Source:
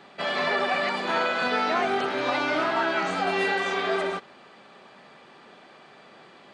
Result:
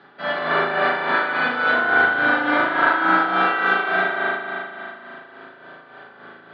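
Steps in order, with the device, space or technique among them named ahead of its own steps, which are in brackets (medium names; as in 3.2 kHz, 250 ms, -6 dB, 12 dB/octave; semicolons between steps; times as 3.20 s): combo amplifier with spring reverb and tremolo (spring tank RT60 2.9 s, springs 37 ms, chirp 55 ms, DRR -8.5 dB; tremolo 3.5 Hz, depth 52%; cabinet simulation 98–4300 Hz, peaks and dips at 110 Hz +5 dB, 270 Hz +4 dB, 1.5 kHz +10 dB, 2.5 kHz -7 dB); trim -2 dB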